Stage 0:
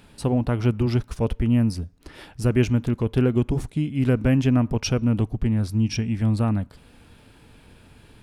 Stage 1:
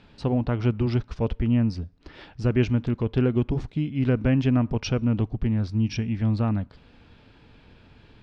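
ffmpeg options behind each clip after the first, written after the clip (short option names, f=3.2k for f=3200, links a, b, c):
-af "lowpass=f=5.1k:w=0.5412,lowpass=f=5.1k:w=1.3066,volume=-2dB"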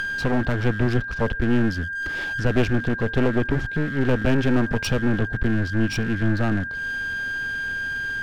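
-af "aeval=exprs='val(0)+0.0178*sin(2*PI*1600*n/s)':c=same,acompressor=mode=upward:threshold=-27dB:ratio=2.5,aeval=exprs='clip(val(0),-1,0.0224)':c=same,volume=6dB"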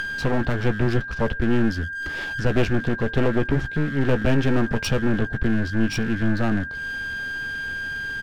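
-filter_complex "[0:a]asplit=2[a][b];[b]adelay=14,volume=-10.5dB[c];[a][c]amix=inputs=2:normalize=0"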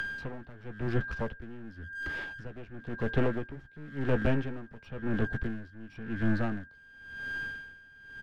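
-filter_complex "[0:a]acrossover=split=220|450|3100[a][b][c][d];[d]acompressor=threshold=-51dB:ratio=6[e];[a][b][c][e]amix=inputs=4:normalize=0,aeval=exprs='val(0)*pow(10,-20*(0.5-0.5*cos(2*PI*0.95*n/s))/20)':c=same,volume=-5.5dB"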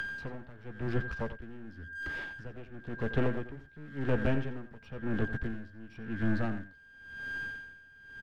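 -af "aecho=1:1:88:0.224,volume=-2dB"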